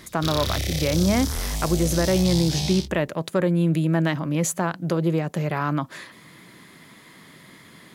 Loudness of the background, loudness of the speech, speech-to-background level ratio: −27.5 LKFS, −23.5 LKFS, 4.0 dB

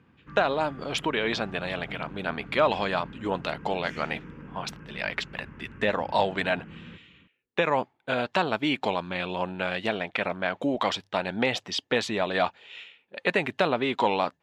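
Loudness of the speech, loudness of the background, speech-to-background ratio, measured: −28.0 LKFS, −45.0 LKFS, 17.0 dB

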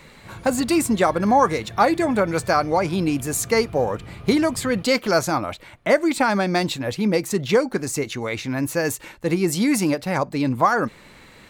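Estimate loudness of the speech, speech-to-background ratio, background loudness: −21.5 LKFS, 18.5 dB, −40.0 LKFS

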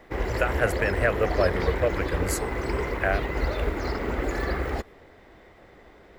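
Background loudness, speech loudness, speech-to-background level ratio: −29.0 LKFS, −28.0 LKFS, 1.0 dB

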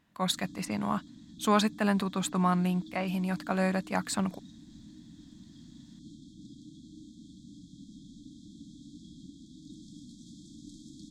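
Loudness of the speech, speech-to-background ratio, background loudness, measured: −30.0 LKFS, 19.5 dB, −49.5 LKFS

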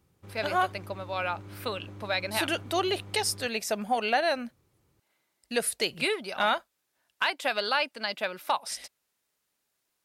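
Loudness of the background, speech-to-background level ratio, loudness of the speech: −46.0 LKFS, 16.5 dB, −29.5 LKFS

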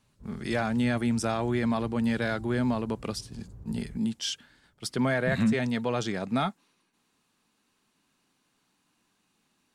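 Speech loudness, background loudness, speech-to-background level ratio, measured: −29.0 LKFS, −48.0 LKFS, 19.0 dB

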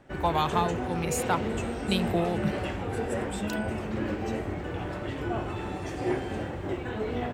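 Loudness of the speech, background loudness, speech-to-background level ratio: −30.0 LKFS, −32.0 LKFS, 2.0 dB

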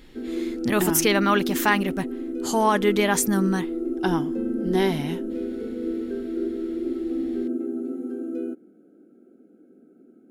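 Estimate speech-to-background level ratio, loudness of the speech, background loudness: 6.0 dB, −23.5 LKFS, −29.5 LKFS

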